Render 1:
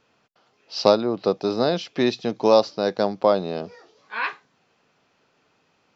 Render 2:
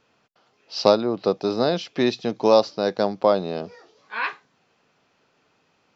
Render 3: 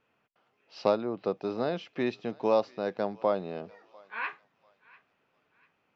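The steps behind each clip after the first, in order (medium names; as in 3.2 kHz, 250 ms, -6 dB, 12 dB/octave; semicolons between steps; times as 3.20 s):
no audible change
resonant high shelf 3.4 kHz -8 dB, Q 1.5; thinning echo 695 ms, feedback 41%, high-pass 1 kHz, level -21.5 dB; trim -9 dB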